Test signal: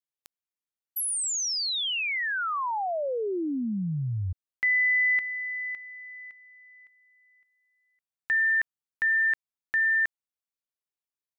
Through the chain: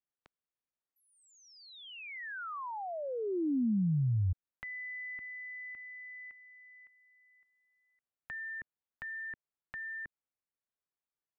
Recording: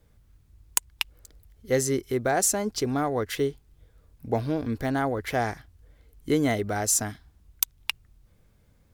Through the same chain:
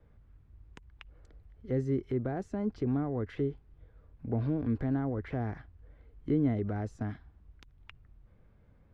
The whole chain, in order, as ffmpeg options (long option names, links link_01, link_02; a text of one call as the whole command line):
ffmpeg -i in.wav -filter_complex "[0:a]acrossover=split=320[link_01][link_02];[link_02]acompressor=threshold=-41dB:ratio=4:attack=1.6:release=65:knee=2.83:detection=peak[link_03];[link_01][link_03]amix=inputs=2:normalize=0,lowpass=1900" out.wav